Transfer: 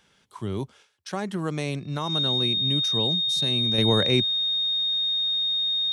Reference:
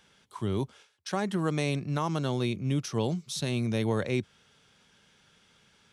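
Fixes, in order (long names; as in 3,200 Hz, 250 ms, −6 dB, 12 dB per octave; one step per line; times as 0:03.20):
notch filter 3,700 Hz, Q 30
level correction −6 dB, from 0:03.78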